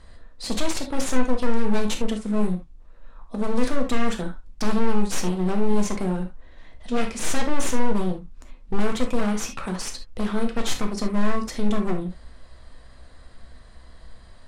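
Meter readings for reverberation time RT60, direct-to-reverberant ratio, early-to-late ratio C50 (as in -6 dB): not exponential, 3.0 dB, 9.0 dB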